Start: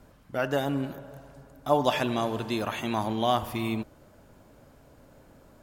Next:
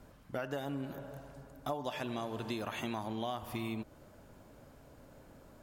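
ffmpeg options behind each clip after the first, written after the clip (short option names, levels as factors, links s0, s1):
-af "acompressor=threshold=0.0251:ratio=10,volume=0.794"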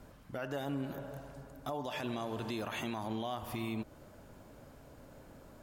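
-af "alimiter=level_in=2:limit=0.0631:level=0:latency=1:release=21,volume=0.501,volume=1.26"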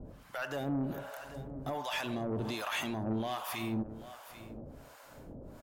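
-filter_complex "[0:a]acrossover=split=680[s0][s1];[s0]aeval=exprs='val(0)*(1-1/2+1/2*cos(2*PI*1.3*n/s))':c=same[s2];[s1]aeval=exprs='val(0)*(1-1/2-1/2*cos(2*PI*1.3*n/s))':c=same[s3];[s2][s3]amix=inputs=2:normalize=0,asoftclip=type=tanh:threshold=0.0141,aecho=1:1:789:0.2,volume=2.82"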